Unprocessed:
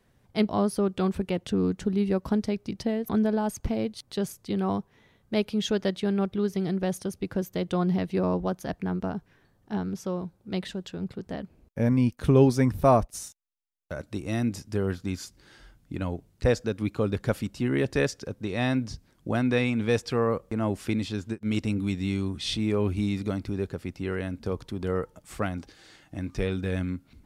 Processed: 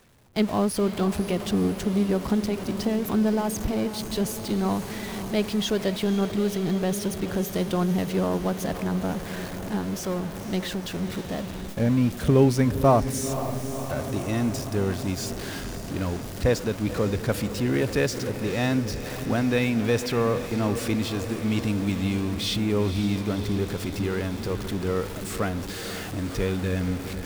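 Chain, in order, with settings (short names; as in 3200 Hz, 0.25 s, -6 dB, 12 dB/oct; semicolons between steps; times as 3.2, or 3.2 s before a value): zero-crossing step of -31.5 dBFS; diffused feedback echo 0.513 s, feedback 71%, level -11 dB; gate with hold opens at -27 dBFS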